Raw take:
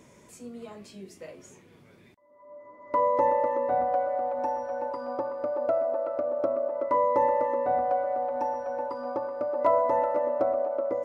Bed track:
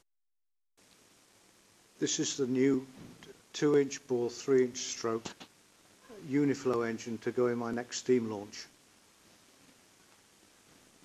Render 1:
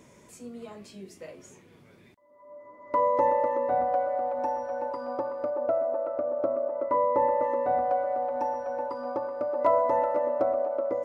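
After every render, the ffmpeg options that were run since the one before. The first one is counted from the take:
-filter_complex "[0:a]asettb=1/sr,asplit=3[s0][s1][s2];[s0]atrim=end=5.504[s3];[s1]atrim=start=5.5:end=7.42,asetpts=PTS-STARTPTS,afade=t=in:d=0.004:c=qsin,afade=t=out:st=1.916:d=0.004:c=qsin,lowpass=f=1800:p=1[s4];[s2]atrim=start=7.416[s5];[s3][s4]acrossfade=d=0.004:c1=hsin:c2=qsin[s6];[s6][s5]acrossfade=d=0.004:c1=qsin:c2=hsin"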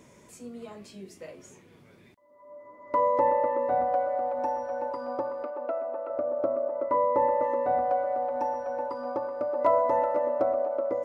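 -filter_complex "[0:a]asettb=1/sr,asplit=3[s0][s1][s2];[s0]atrim=end=3.194[s3];[s1]atrim=start=3.19:end=3.59,asetpts=PTS-STARTPTS,afade=t=in:d=0.004:c=qsin,afade=t=out:st=0.396:d=0.004:c=qsin,lowpass=3700[s4];[s2]atrim=start=3.586[s5];[s3][s4]acrossfade=d=0.004:c1=hsin:c2=qsin[s6];[s6][s5]acrossfade=d=0.004:c1=qsin:c2=hsin,asettb=1/sr,asplit=3[s7][s8][s9];[s7]atrim=end=5.434[s10];[s8]atrim=start=5.43:end=6.1,asetpts=PTS-STARTPTS,afade=t=in:d=0.004:c=qsin,afade=t=out:st=0.666:d=0.004:c=qsin,highpass=f=260:w=0.5412,highpass=f=260:w=1.3066,equalizer=f=330:t=q:w=4:g=-4,equalizer=f=610:t=q:w=4:g=-7,equalizer=f=2700:t=q:w=4:g=5,lowpass=f=4900:w=0.5412,lowpass=f=4900:w=1.3066[s11];[s9]atrim=start=6.096[s12];[s10][s11]acrossfade=d=0.004:c1=hsin:c2=qsin[s13];[s13][s12]acrossfade=d=0.004:c1=qsin:c2=hsin"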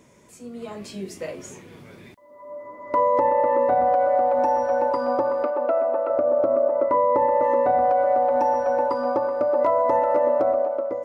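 -af "dynaudnorm=f=120:g=11:m=3.55,alimiter=limit=0.266:level=0:latency=1:release=111"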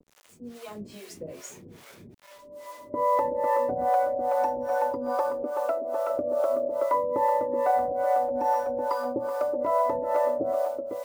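-filter_complex "[0:a]acrusher=bits=7:mix=0:aa=0.000001,acrossover=split=500[s0][s1];[s0]aeval=exprs='val(0)*(1-1/2+1/2*cos(2*PI*2.4*n/s))':c=same[s2];[s1]aeval=exprs='val(0)*(1-1/2-1/2*cos(2*PI*2.4*n/s))':c=same[s3];[s2][s3]amix=inputs=2:normalize=0"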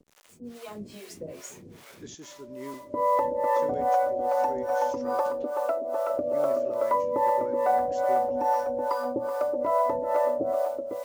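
-filter_complex "[1:a]volume=0.224[s0];[0:a][s0]amix=inputs=2:normalize=0"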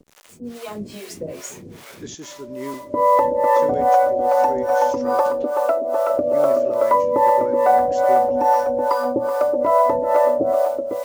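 -af "volume=2.66"

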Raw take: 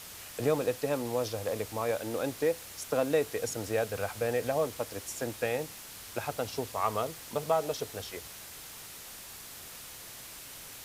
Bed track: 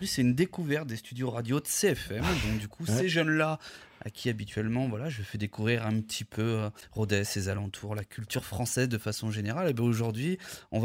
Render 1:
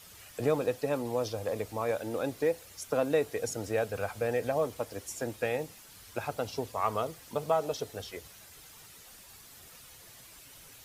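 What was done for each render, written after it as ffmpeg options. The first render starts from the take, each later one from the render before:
-af "afftdn=nr=9:nf=-47"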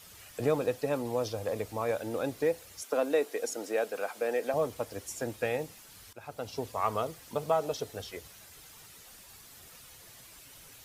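-filter_complex "[0:a]asettb=1/sr,asplit=3[s0][s1][s2];[s0]atrim=end=2.824[s3];[s1]atrim=start=2.82:end=4.54,asetpts=PTS-STARTPTS,afade=t=in:d=0.004:c=qsin,afade=t=out:st=1.716:d=0.004:c=qsin,highpass=f=250:w=0.5412,highpass=f=250:w=1.3066[s4];[s2]atrim=start=4.536[s5];[s3][s4]acrossfade=d=0.004:c1=hsin:c2=qsin[s6];[s6][s5]acrossfade=d=0.004:c1=qsin:c2=hsin,asplit=2[s7][s8];[s7]atrim=end=6.13,asetpts=PTS-STARTPTS,afade=t=out:st=6.126:d=0.004:c=hsin:silence=0.133352[s9];[s8]atrim=start=6.13,asetpts=PTS-STARTPTS,afade=t=in:d=0.54:silence=0.133352[s10];[s9][s10]concat=n=2:v=0:a=1"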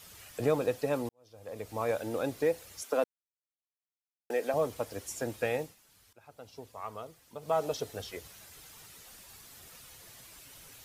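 -filter_complex "[0:a]asplit=6[s0][s1][s2][s3][s4][s5];[s0]atrim=end=1.09,asetpts=PTS-STARTPTS,afade=t=out:st=1.086:d=0.004:c=hsin[s6];[s1]atrim=start=1.09:end=3.04,asetpts=PTS-STARTPTS,afade=t=in:d=0.72:c=qua,afade=t=out:st=1.946:d=0.004:c=hsin[s7];[s2]atrim=start=3.04:end=4.3,asetpts=PTS-STARTPTS,volume=0[s8];[s3]atrim=start=4.3:end=5.76,asetpts=PTS-STARTPTS,afade=t=in:d=0.004:c=hsin,afade=t=out:st=1.29:d=0.17:silence=0.281838[s9];[s4]atrim=start=5.76:end=7.41,asetpts=PTS-STARTPTS,volume=0.282[s10];[s5]atrim=start=7.41,asetpts=PTS-STARTPTS,afade=t=in:d=0.17:silence=0.281838[s11];[s6][s7][s8][s9][s10][s11]concat=n=6:v=0:a=1"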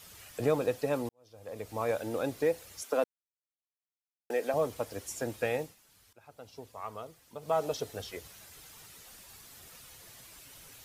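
-af anull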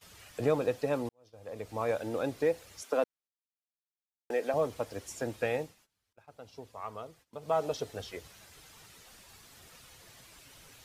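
-af "highshelf=f=9800:g=-11,agate=range=0.126:threshold=0.00112:ratio=16:detection=peak"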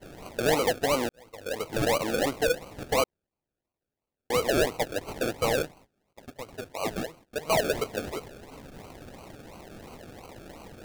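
-filter_complex "[0:a]asplit=2[s0][s1];[s1]highpass=f=720:p=1,volume=10,asoftclip=type=tanh:threshold=0.168[s2];[s0][s2]amix=inputs=2:normalize=0,lowpass=f=3100:p=1,volume=0.501,acrusher=samples=35:mix=1:aa=0.000001:lfo=1:lforange=21:lforate=2.9"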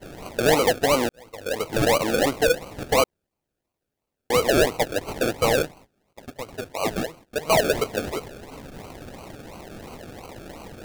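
-af "volume=1.88"

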